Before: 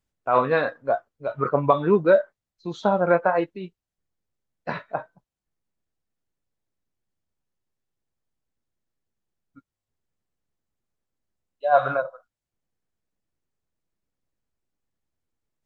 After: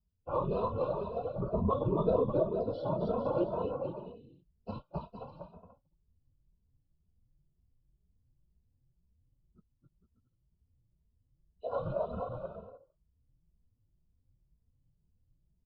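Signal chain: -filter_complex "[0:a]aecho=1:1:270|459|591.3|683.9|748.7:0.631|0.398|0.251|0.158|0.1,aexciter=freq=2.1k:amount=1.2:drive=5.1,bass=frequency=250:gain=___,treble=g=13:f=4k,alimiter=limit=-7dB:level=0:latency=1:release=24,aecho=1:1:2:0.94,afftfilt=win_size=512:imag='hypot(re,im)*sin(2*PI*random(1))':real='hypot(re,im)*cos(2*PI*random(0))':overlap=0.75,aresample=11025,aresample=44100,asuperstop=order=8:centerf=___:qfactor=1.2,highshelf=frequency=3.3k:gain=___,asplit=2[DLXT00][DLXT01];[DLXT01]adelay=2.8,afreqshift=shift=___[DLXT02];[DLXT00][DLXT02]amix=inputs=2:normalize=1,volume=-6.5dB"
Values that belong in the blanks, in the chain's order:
14, 1900, -8, 2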